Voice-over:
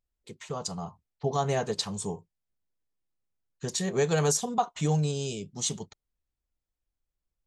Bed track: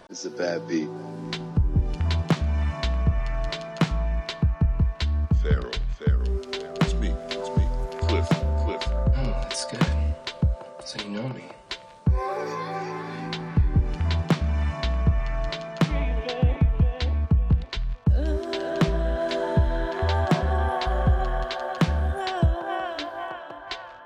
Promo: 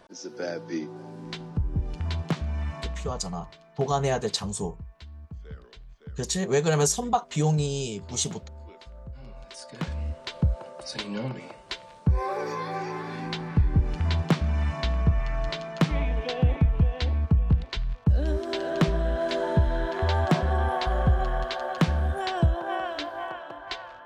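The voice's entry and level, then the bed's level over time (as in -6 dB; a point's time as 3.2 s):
2.55 s, +2.5 dB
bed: 2.78 s -5.5 dB
3.38 s -19.5 dB
9.18 s -19.5 dB
10.43 s -1 dB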